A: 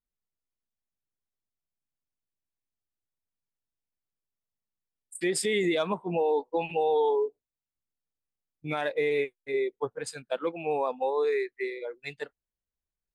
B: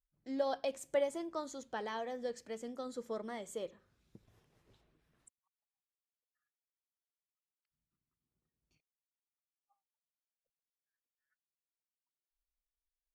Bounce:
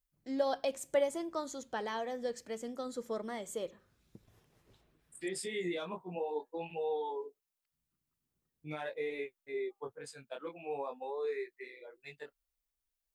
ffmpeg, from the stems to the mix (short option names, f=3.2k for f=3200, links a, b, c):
-filter_complex "[0:a]flanger=delay=17:depth=5.8:speed=0.43,volume=-8dB[a];[1:a]highshelf=f=9.5k:g=6,volume=2.5dB[b];[a][b]amix=inputs=2:normalize=0"